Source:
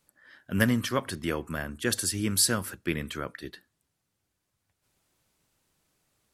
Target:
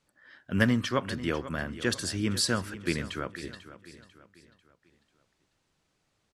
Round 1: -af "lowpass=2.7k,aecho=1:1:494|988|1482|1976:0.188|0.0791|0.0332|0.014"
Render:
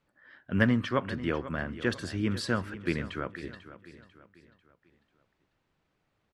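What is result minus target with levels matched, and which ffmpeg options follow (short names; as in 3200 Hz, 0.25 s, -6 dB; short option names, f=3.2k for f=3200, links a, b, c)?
8000 Hz band -12.5 dB
-af "lowpass=6.1k,aecho=1:1:494|988|1482|1976:0.188|0.0791|0.0332|0.014"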